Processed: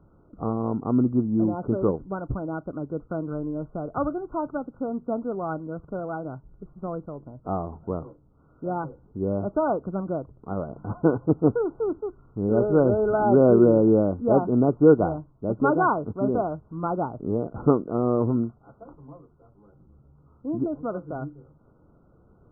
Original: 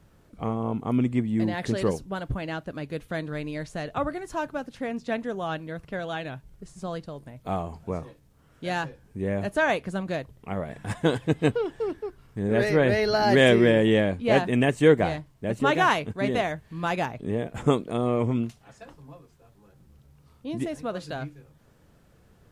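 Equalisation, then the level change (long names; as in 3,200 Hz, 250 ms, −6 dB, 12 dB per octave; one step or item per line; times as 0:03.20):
linear-phase brick-wall low-pass 1,500 Hz
parametric band 320 Hz +5 dB 0.77 octaves
0.0 dB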